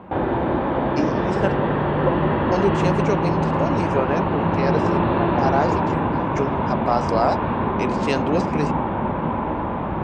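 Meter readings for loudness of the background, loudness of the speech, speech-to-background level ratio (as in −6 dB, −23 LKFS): −22.0 LKFS, −26.0 LKFS, −4.0 dB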